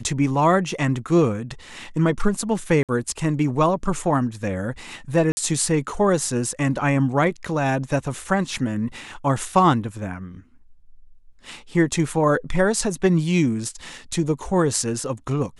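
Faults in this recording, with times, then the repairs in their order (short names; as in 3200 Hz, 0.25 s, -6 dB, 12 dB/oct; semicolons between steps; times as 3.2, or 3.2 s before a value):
2.83–2.89 gap 57 ms
5.32–5.37 gap 50 ms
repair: interpolate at 2.83, 57 ms; interpolate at 5.32, 50 ms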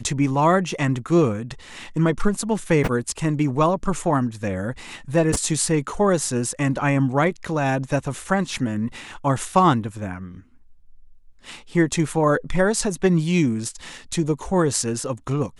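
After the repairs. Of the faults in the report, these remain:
none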